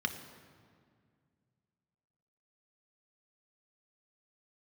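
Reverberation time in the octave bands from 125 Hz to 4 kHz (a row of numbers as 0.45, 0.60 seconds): 3.0, 2.7, 2.1, 1.9, 1.7, 1.4 seconds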